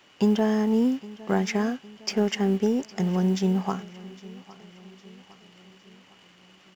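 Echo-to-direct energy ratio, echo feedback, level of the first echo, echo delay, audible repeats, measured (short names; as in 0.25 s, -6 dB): -18.5 dB, 52%, -20.0 dB, 0.809 s, 3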